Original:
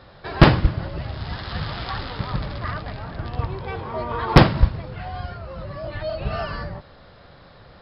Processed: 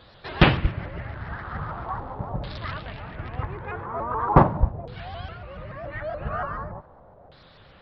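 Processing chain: word length cut 12-bit, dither none; LFO low-pass saw down 0.41 Hz 690–4200 Hz; vibrato with a chosen wave saw up 7 Hz, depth 160 cents; trim -5 dB

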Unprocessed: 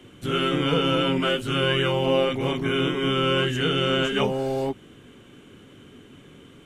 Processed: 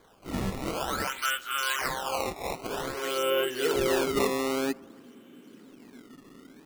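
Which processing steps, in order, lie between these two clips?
high-pass sweep 1.6 kHz -> 240 Hz, 1.05–4.74 s; decimation with a swept rate 16×, swing 160% 0.52 Hz; bucket-brigade echo 99 ms, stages 1024, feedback 72%, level -23.5 dB; trim -6.5 dB

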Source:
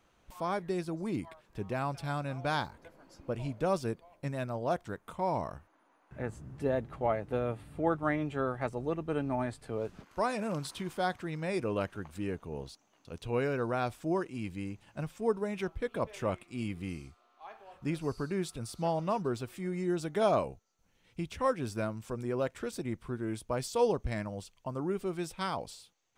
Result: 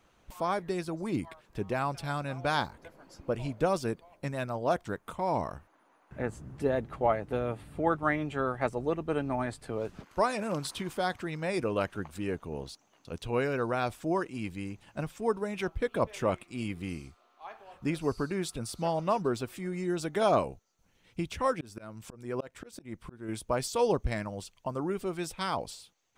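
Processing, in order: harmonic-percussive split percussive +5 dB; 21.51–23.29 s: slow attack 303 ms

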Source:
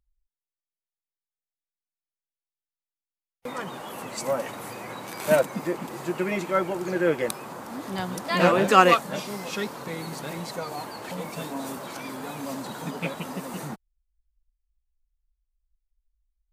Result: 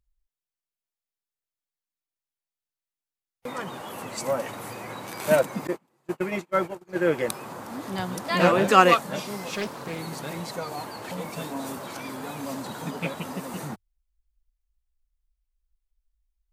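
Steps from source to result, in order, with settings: peaking EQ 100 Hz +6 dB 0.41 oct; 5.67–7.11 s: gate -26 dBFS, range -33 dB; 9.52–9.99 s: loudspeaker Doppler distortion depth 0.34 ms

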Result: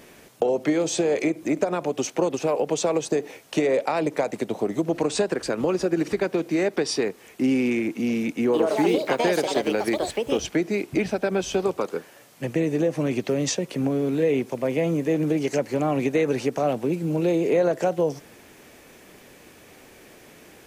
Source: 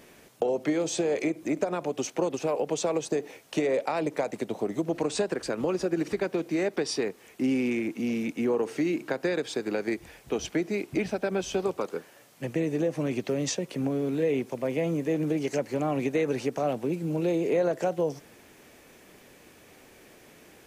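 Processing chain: 8.35–10.86 s: ever faster or slower copies 174 ms, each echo +5 st, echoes 2; trim +4.5 dB

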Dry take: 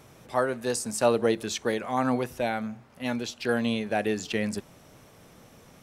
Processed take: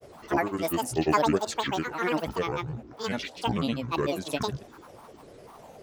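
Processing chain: band noise 400–760 Hz -49 dBFS; granulator, pitch spread up and down by 12 st

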